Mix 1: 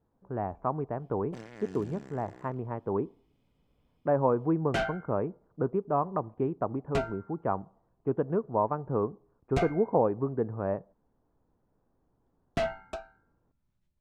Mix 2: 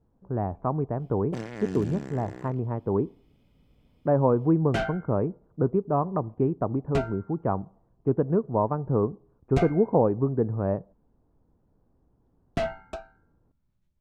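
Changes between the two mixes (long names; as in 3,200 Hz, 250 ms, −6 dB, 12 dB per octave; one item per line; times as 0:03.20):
speech: add spectral tilt −1.5 dB per octave
first sound +7.5 dB
master: add low-shelf EQ 440 Hz +4 dB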